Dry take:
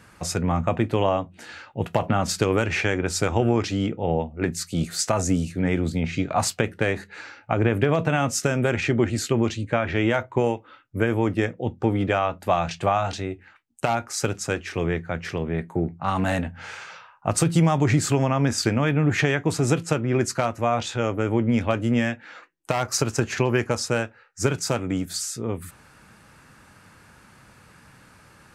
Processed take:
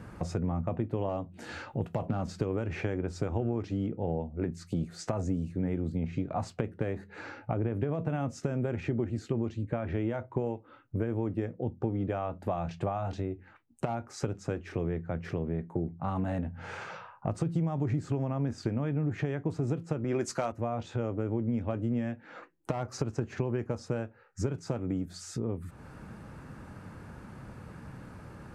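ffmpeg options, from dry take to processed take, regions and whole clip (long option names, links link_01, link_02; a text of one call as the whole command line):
ffmpeg -i in.wav -filter_complex "[0:a]asettb=1/sr,asplit=3[link_01][link_02][link_03];[link_01]atrim=end=1.094[link_04];[link_02]atrim=start=1.09:end=2.26,asetpts=PTS-STARTPTS,afade=type=in:duration=0.004:curve=qsin,afade=type=out:start_time=1.166:duration=0.004:curve=qsin,highshelf=frequency=4300:gain=10.5,acompressor=mode=upward:threshold=-45dB:ratio=2.5:attack=3.2:release=140:knee=2.83:detection=peak,asoftclip=type=hard:threshold=-13.5dB[link_05];[link_03]atrim=start=2.256[link_06];[link_04][link_05]acrossfade=duration=0.004:curve1=hsin:curve2=qsin[link_07];[link_07][link_06]acrossfade=duration=0.004:curve1=qsin:curve2=hsin,asettb=1/sr,asplit=3[link_08][link_09][link_10];[link_08]atrim=end=20.044[link_11];[link_09]atrim=start=20.04:end=20.52,asetpts=PTS-STARTPTS,afade=type=in:duration=0.004:curve=qsin,afade=type=out:start_time=0.476:duration=0.004:curve=qsin,aemphasis=mode=production:type=riaa,acontrast=83[link_12];[link_10]atrim=start=20.516[link_13];[link_11][link_12]acrossfade=duration=0.004:curve1=hsin:curve2=qsin[link_14];[link_14][link_13]acrossfade=duration=0.004:curve1=qsin:curve2=hsin,acrossover=split=8200[link_15][link_16];[link_16]acompressor=threshold=-50dB:ratio=4:attack=1:release=60[link_17];[link_15][link_17]amix=inputs=2:normalize=0,tiltshelf=frequency=1200:gain=9,acompressor=threshold=-34dB:ratio=3" out.wav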